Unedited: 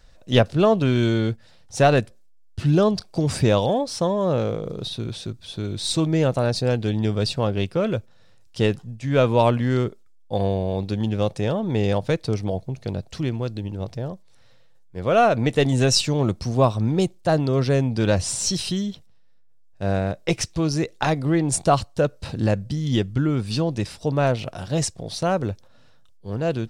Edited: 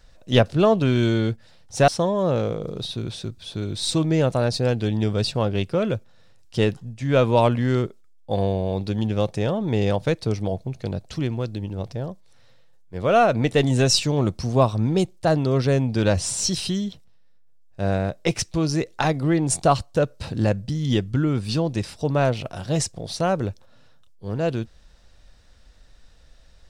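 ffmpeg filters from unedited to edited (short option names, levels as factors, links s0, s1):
-filter_complex "[0:a]asplit=2[s0][s1];[s0]atrim=end=1.882[s2];[s1]atrim=start=3.898[s3];[s2][s3]acrossfade=d=0.004:c1=hsin:c2=hsin"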